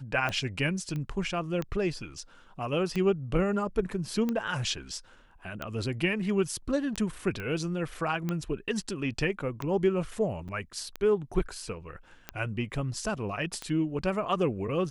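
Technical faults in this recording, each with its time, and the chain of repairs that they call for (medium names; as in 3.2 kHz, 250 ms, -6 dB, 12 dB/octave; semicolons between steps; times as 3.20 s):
tick 45 rpm -18 dBFS
0.96 s: pop -24 dBFS
7.40 s: pop -24 dBFS
10.48–10.49 s: dropout 7.2 ms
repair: de-click; interpolate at 10.48 s, 7.2 ms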